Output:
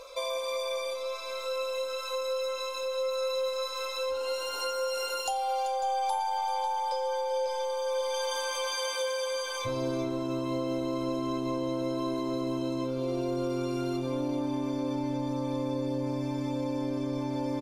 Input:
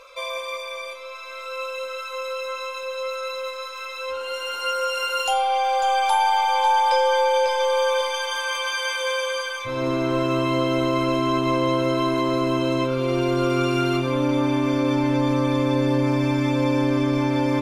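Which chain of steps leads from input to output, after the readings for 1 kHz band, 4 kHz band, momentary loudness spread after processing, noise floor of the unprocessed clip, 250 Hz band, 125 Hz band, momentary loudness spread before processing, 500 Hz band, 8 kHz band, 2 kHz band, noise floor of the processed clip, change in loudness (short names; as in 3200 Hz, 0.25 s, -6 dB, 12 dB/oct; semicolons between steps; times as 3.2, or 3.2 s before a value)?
-10.5 dB, -7.5 dB, 2 LU, -34 dBFS, -9.0 dB, -11.5 dB, 11 LU, -7.0 dB, -3.5 dB, -13.0 dB, -35 dBFS, -9.0 dB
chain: band shelf 1900 Hz -9.5 dB; compressor, threshold -32 dBFS, peak gain reduction 14.5 dB; echo 0.386 s -12 dB; gain +3 dB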